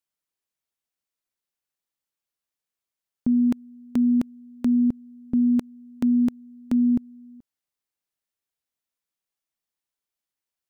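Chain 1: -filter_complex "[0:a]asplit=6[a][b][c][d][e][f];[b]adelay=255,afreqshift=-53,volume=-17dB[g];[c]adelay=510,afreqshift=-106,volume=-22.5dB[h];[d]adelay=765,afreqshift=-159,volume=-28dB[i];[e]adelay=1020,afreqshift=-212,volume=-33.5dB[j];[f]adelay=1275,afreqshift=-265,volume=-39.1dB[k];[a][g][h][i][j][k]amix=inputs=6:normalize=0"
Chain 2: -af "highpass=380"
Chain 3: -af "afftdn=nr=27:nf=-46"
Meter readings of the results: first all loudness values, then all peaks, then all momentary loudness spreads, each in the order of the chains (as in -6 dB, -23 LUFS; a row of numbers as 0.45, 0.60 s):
-23.5, -32.0, -23.5 LUFS; -14.5, -15.0, -15.5 dBFS; 15, 8, 8 LU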